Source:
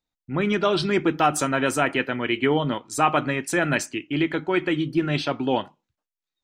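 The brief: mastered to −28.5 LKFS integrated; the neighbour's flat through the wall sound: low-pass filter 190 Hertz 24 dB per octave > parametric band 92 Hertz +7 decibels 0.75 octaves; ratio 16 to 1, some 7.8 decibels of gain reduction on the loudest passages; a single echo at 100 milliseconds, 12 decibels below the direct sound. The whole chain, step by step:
downward compressor 16 to 1, threshold −23 dBFS
low-pass filter 190 Hz 24 dB per octave
parametric band 92 Hz +7 dB 0.75 octaves
single-tap delay 100 ms −12 dB
level +9 dB

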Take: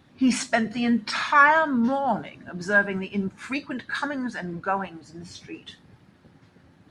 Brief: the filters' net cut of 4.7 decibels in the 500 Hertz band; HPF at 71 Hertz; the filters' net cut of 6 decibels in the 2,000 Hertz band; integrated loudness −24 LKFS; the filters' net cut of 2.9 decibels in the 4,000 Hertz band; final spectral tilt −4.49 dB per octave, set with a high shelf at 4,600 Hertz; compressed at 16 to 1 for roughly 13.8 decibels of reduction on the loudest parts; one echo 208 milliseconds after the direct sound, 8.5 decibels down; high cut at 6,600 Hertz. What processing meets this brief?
high-pass filter 71 Hz
low-pass filter 6,600 Hz
parametric band 500 Hz −6 dB
parametric band 2,000 Hz −8 dB
parametric band 4,000 Hz −5.5 dB
high-shelf EQ 4,600 Hz +8.5 dB
downward compressor 16 to 1, threshold −29 dBFS
single-tap delay 208 ms −8.5 dB
level +10.5 dB

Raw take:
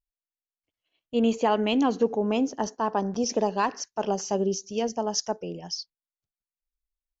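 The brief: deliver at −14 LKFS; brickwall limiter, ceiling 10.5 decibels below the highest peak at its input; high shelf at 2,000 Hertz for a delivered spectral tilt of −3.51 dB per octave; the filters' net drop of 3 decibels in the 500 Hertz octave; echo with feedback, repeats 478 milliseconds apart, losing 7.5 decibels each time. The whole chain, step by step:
parametric band 500 Hz −4 dB
high-shelf EQ 2,000 Hz +4.5 dB
brickwall limiter −21 dBFS
repeating echo 478 ms, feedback 42%, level −7.5 dB
level +17 dB

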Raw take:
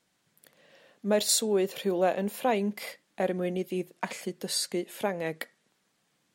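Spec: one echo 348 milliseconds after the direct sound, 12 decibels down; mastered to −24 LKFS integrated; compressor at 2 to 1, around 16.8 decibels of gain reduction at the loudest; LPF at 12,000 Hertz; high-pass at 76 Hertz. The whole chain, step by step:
high-pass filter 76 Hz
low-pass filter 12,000 Hz
downward compressor 2 to 1, threshold −53 dBFS
single-tap delay 348 ms −12 dB
level +20.5 dB

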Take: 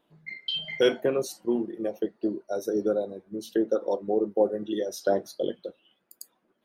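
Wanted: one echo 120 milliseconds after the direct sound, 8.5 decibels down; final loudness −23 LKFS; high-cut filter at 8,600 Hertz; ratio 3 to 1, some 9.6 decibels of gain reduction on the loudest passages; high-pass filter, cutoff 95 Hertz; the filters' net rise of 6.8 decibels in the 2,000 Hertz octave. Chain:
high-pass filter 95 Hz
low-pass filter 8,600 Hz
parametric band 2,000 Hz +8.5 dB
downward compressor 3 to 1, threshold −29 dBFS
single-tap delay 120 ms −8.5 dB
level +10 dB

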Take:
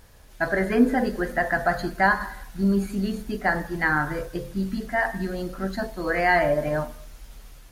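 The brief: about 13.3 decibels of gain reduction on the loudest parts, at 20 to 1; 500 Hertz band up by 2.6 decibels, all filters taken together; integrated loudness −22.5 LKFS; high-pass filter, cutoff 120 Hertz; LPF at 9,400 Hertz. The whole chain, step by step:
high-pass filter 120 Hz
low-pass filter 9,400 Hz
parametric band 500 Hz +3.5 dB
downward compressor 20 to 1, threshold −24 dBFS
level +7.5 dB

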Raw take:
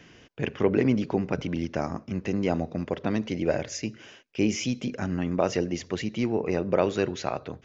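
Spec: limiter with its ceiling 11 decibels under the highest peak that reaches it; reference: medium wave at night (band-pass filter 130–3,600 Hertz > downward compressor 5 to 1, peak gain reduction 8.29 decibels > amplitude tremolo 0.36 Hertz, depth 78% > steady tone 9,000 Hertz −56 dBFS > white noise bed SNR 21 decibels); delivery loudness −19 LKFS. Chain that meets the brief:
brickwall limiter −19.5 dBFS
band-pass filter 130–3,600 Hz
downward compressor 5 to 1, threshold −33 dBFS
amplitude tremolo 0.36 Hz, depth 78%
steady tone 9,000 Hz −56 dBFS
white noise bed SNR 21 dB
level +23 dB

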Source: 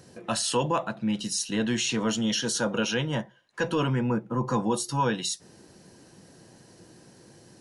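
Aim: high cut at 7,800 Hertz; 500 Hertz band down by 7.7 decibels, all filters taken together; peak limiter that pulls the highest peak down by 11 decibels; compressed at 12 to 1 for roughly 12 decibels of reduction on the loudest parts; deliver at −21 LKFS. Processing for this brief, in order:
low-pass filter 7,800 Hz
parametric band 500 Hz −9 dB
downward compressor 12 to 1, threshold −36 dBFS
level +21.5 dB
brickwall limiter −12 dBFS

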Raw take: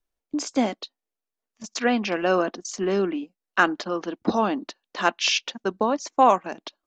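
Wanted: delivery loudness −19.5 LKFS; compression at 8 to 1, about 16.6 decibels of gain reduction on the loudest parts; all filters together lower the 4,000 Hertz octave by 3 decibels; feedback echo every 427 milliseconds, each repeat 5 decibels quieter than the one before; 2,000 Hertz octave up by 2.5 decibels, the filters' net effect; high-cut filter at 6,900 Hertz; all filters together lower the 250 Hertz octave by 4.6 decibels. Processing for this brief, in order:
low-pass filter 6,900 Hz
parametric band 250 Hz −6 dB
parametric band 2,000 Hz +5 dB
parametric band 4,000 Hz −6 dB
downward compressor 8 to 1, threshold −29 dBFS
repeating echo 427 ms, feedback 56%, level −5 dB
level +14.5 dB

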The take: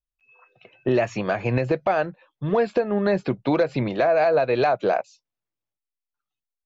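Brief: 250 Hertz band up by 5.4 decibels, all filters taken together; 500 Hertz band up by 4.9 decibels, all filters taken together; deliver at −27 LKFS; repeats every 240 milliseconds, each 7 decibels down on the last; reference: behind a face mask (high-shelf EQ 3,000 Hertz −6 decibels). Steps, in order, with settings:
parametric band 250 Hz +5.5 dB
parametric band 500 Hz +5 dB
high-shelf EQ 3,000 Hz −6 dB
repeating echo 240 ms, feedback 45%, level −7 dB
level −9.5 dB

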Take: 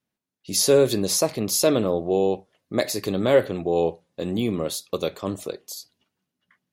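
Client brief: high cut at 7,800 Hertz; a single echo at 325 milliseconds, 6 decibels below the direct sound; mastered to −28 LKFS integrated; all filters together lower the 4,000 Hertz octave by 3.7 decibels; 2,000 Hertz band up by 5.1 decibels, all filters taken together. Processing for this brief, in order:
low-pass filter 7,800 Hz
parametric band 2,000 Hz +8 dB
parametric band 4,000 Hz −6 dB
single-tap delay 325 ms −6 dB
level −5.5 dB

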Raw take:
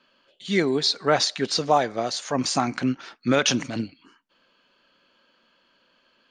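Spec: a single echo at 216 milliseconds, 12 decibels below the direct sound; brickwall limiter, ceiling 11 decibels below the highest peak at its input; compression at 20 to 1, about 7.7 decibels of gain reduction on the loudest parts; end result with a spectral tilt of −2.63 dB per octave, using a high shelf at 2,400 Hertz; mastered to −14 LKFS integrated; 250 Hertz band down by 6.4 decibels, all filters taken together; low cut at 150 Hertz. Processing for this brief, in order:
high-pass filter 150 Hz
parametric band 250 Hz −7 dB
high-shelf EQ 2,400 Hz +6 dB
downward compressor 20 to 1, threshold −21 dBFS
brickwall limiter −21 dBFS
single-tap delay 216 ms −12 dB
level +17.5 dB

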